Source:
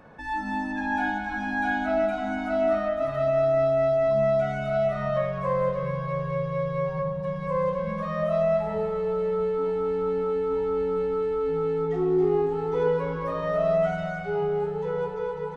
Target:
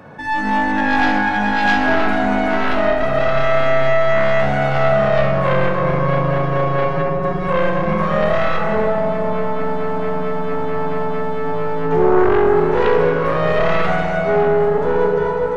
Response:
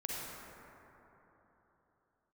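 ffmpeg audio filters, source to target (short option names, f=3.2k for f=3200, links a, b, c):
-filter_complex "[0:a]highpass=f=86:w=0.5412,highpass=f=86:w=1.3066,lowshelf=f=110:g=7.5,aeval=exprs='0.237*(cos(1*acos(clip(val(0)/0.237,-1,1)))-cos(1*PI/2))+0.0841*(cos(5*acos(clip(val(0)/0.237,-1,1)))-cos(5*PI/2))+0.075*(cos(6*acos(clip(val(0)/0.237,-1,1)))-cos(6*PI/2))':c=same,asplit=2[a][b];[1:a]atrim=start_sample=2205,adelay=68[c];[b][c]afir=irnorm=-1:irlink=0,volume=-6dB[d];[a][d]amix=inputs=2:normalize=0,volume=1dB"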